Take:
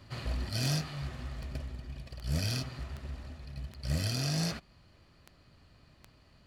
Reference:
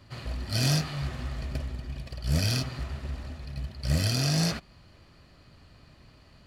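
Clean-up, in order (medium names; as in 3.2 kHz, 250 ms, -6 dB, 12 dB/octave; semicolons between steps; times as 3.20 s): de-click; gain correction +6 dB, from 0.49 s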